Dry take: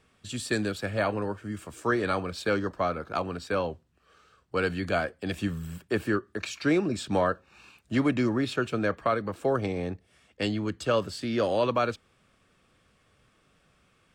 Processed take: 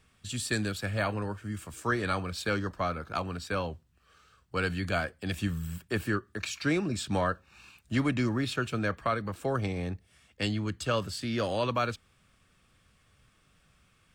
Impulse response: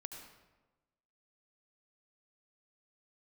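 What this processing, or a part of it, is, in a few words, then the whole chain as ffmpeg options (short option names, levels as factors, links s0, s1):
smiley-face EQ: -af "lowshelf=f=140:g=5,equalizer=f=430:t=o:w=2.1:g=-6.5,highshelf=f=9500:g=6"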